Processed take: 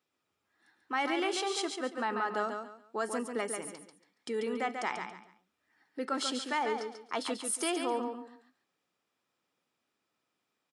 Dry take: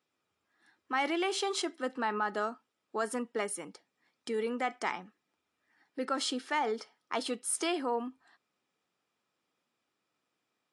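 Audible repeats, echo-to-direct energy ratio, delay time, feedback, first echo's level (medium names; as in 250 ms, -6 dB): 3, -5.5 dB, 140 ms, 27%, -6.0 dB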